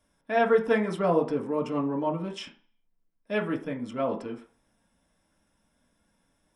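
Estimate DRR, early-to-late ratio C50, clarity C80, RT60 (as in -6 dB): -1.0 dB, 11.5 dB, 16.5 dB, 0.45 s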